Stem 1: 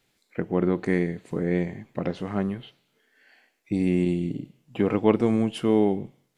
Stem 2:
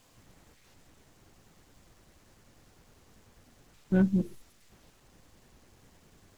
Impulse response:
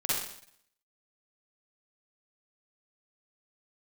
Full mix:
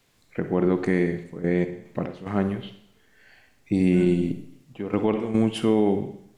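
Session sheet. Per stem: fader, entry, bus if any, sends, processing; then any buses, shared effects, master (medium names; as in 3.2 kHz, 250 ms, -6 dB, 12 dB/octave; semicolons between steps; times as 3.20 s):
+2.0 dB, 0.00 s, send -17 dB, trance gate "xxxxxx.x.x.xxxx" 73 bpm -12 dB
-13.0 dB, 0.00 s, send -4 dB, none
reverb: on, RT60 0.65 s, pre-delay 42 ms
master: peak limiter -10.5 dBFS, peak gain reduction 8.5 dB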